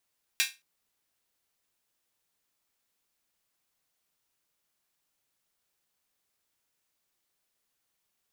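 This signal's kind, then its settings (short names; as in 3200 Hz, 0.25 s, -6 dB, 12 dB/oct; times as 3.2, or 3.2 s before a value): open hi-hat length 0.22 s, high-pass 2200 Hz, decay 0.24 s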